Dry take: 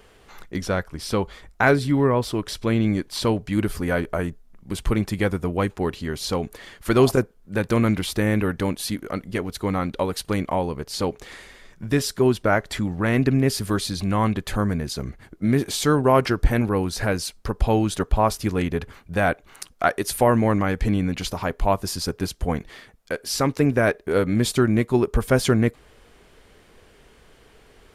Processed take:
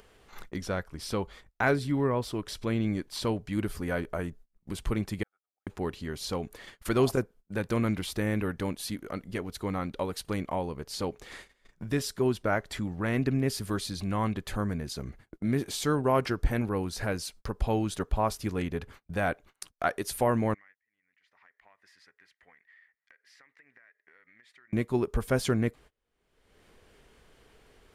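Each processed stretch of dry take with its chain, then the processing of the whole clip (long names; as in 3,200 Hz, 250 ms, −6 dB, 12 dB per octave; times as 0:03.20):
0:05.23–0:05.67: first difference + volume swells 505 ms + pair of resonant band-passes 1,000 Hz, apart 0.71 octaves
0:20.54–0:24.73: resonant band-pass 1,900 Hz, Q 11 + downward compressor 4 to 1, threshold −48 dBFS
whole clip: noise gate −41 dBFS, range −30 dB; upward compression, threshold −26 dBFS; level −8 dB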